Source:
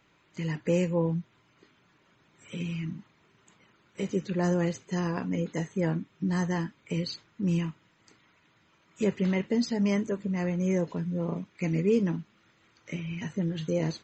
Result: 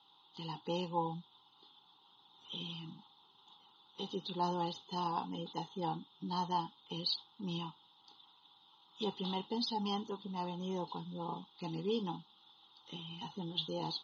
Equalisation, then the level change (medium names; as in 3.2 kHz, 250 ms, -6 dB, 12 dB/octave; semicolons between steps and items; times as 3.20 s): two resonant band-passes 1.7 kHz, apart 2.1 oct; distance through air 66 m; static phaser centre 2.3 kHz, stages 6; +16.0 dB